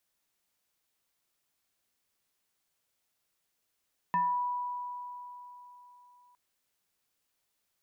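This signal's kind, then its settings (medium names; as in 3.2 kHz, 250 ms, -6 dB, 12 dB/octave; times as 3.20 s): FM tone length 2.21 s, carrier 982 Hz, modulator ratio 0.82, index 0.61, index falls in 0.42 s exponential, decay 3.66 s, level -24 dB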